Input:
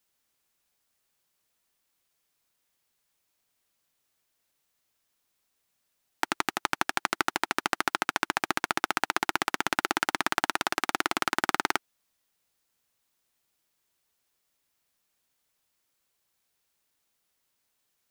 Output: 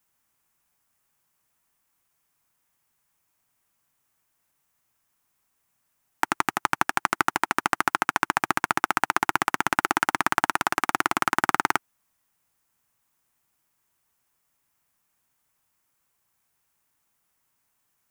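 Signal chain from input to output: ten-band EQ 125 Hz +4 dB, 500 Hz -5 dB, 1000 Hz +4 dB, 4000 Hz -8 dB; gain +4 dB

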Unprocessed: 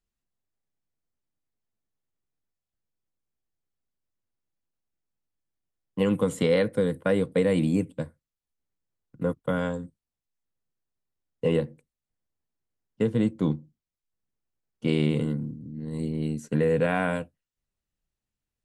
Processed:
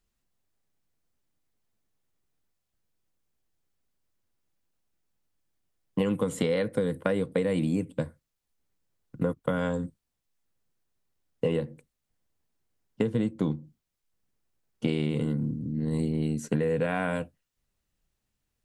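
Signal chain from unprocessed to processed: compressor 6:1, threshold -31 dBFS, peak gain reduction 12.5 dB; gain +7 dB

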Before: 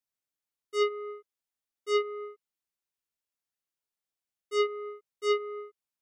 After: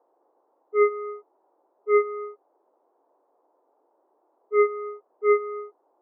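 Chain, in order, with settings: sine-wave speech; low-pass opened by the level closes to 460 Hz, open at -25 dBFS; band noise 320–960 Hz -75 dBFS; gain +7 dB

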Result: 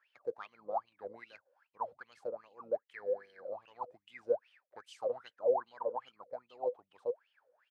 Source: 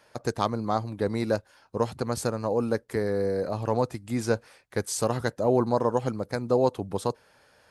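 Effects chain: harmoniser -12 st -17 dB, -5 st -14 dB; wah 2.5 Hz 490–3100 Hz, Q 19; gain +2.5 dB

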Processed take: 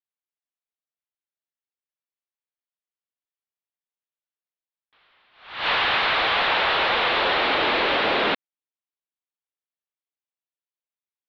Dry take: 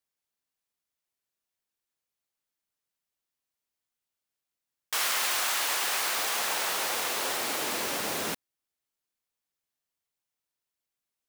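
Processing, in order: HPF 290 Hz 12 dB/oct; sample leveller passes 5; steep low-pass 3900 Hz 48 dB/oct; attack slew limiter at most 110 dB/s

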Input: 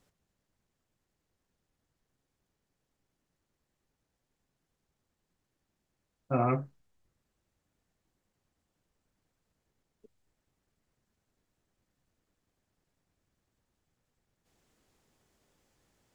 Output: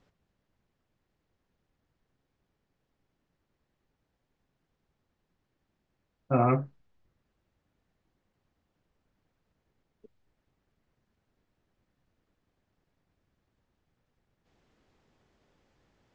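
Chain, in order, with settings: air absorption 150 m; gain +4 dB

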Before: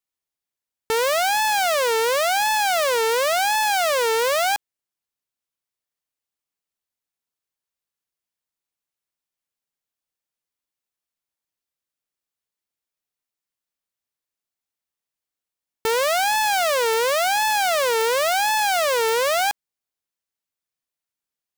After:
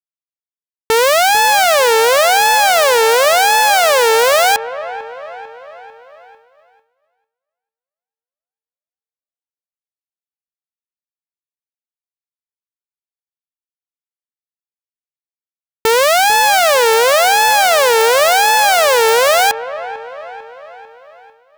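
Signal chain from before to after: on a send: dark delay 0.447 s, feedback 53%, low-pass 1900 Hz, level -13 dB; on the sum: expander -49 dBFS; gain +9 dB

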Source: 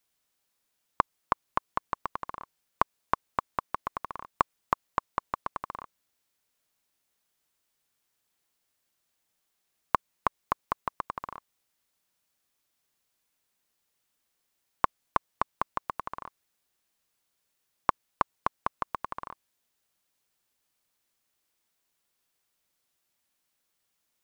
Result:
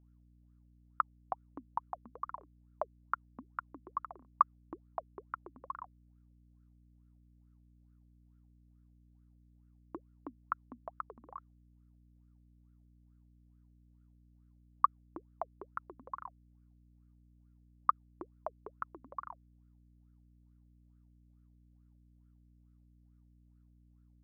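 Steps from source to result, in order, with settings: wah 2.3 Hz 230–1400 Hz, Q 13; hum 60 Hz, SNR 19 dB; gain +5.5 dB

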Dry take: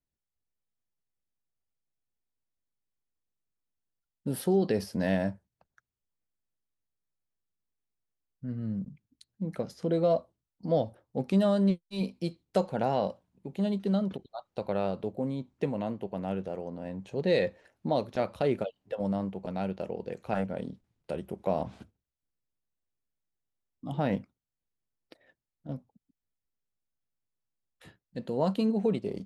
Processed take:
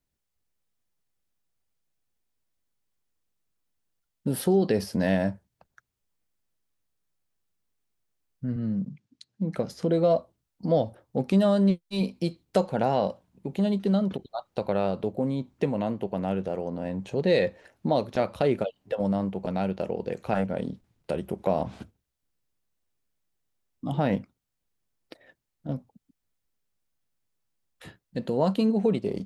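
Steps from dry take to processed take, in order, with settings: 8.56–9.56 Chebyshev band-pass 140–6100 Hz, order 2; in parallel at 0 dB: compressor, threshold -35 dBFS, peak gain reduction 14 dB; on the sum: gain +1.5 dB

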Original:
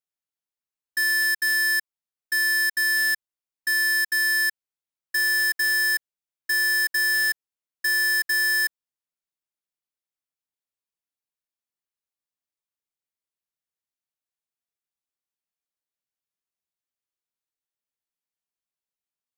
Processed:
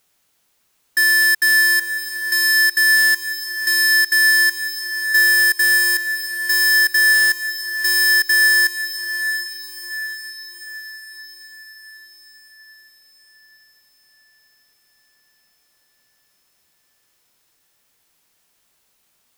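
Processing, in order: power-law curve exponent 0.7; diffused feedback echo 0.713 s, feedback 53%, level -10 dB; gain +7.5 dB

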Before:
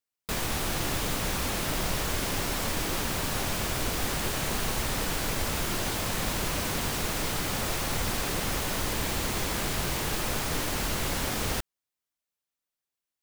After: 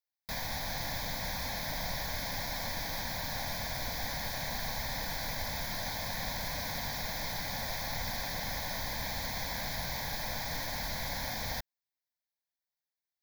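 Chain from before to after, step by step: low shelf 240 Hz -5.5 dB; fixed phaser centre 1900 Hz, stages 8; gain -2.5 dB

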